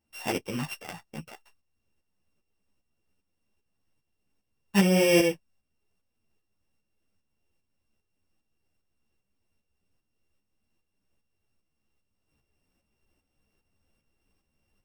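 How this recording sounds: a buzz of ramps at a fixed pitch in blocks of 16 samples; tremolo saw up 2.5 Hz, depth 60%; a shimmering, thickened sound

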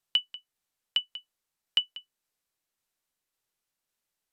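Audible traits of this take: tremolo saw down 1.8 Hz, depth 35%; SBC

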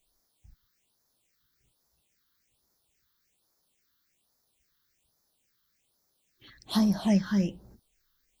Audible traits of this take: a quantiser's noise floor 12-bit, dither triangular; phasing stages 6, 1.2 Hz, lowest notch 640–2800 Hz

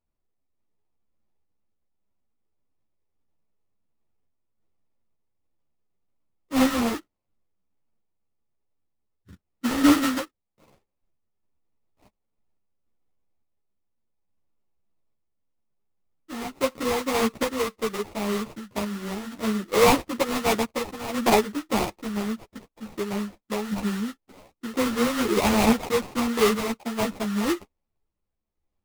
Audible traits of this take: aliases and images of a low sample rate 1600 Hz, jitter 20%; random-step tremolo 3.5 Hz; a shimmering, thickened sound

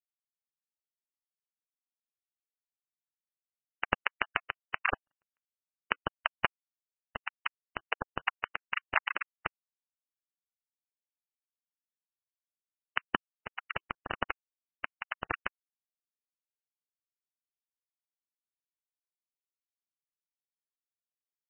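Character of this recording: a quantiser's noise floor 8-bit, dither none; random-step tremolo 1.2 Hz, depth 100%; aliases and images of a low sample rate 4400 Hz, jitter 0%; MP3

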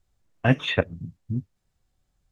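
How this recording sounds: noise floor -76 dBFS; spectral tilt -5.0 dB/oct

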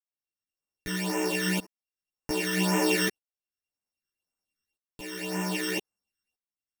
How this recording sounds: a buzz of ramps at a fixed pitch in blocks of 16 samples; phasing stages 12, 1.9 Hz, lowest notch 760–4200 Hz; tremolo saw up 0.63 Hz, depth 95%; a shimmering, thickened sound

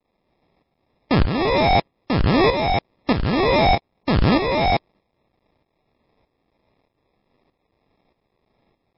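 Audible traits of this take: a quantiser's noise floor 12-bit, dither triangular; tremolo saw up 1.6 Hz, depth 65%; aliases and images of a low sample rate 1500 Hz, jitter 0%; MP3

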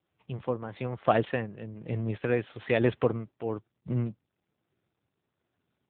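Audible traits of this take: tremolo triangle 1.1 Hz, depth 75%; AMR-NB

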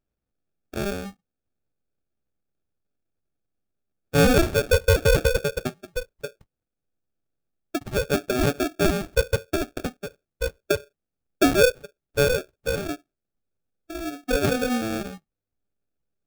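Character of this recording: aliases and images of a low sample rate 1000 Hz, jitter 0%

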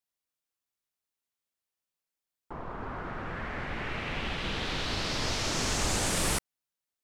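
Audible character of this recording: noise floor -90 dBFS; spectral tilt -2.5 dB/oct

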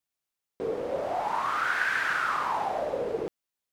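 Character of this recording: noise floor -88 dBFS; spectral tilt -1.0 dB/oct

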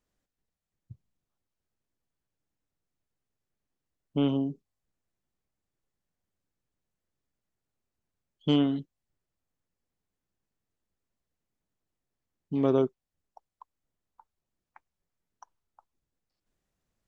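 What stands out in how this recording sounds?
noise floor -88 dBFS; spectral tilt -7.0 dB/oct

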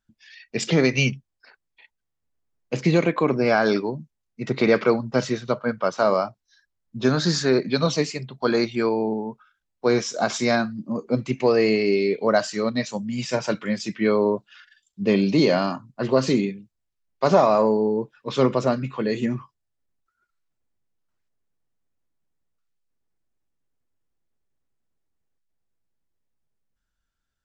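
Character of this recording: noise floor -79 dBFS; spectral tilt -5.0 dB/oct

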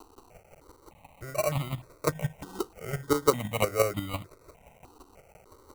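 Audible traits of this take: a quantiser's noise floor 8-bit, dither triangular; chopped level 5.8 Hz, depth 60%, duty 15%; aliases and images of a low sample rate 1700 Hz, jitter 0%; notches that jump at a steady rate 3.3 Hz 600–1600 Hz

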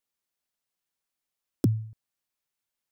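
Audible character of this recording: noise floor -87 dBFS; spectral tilt -10.0 dB/oct

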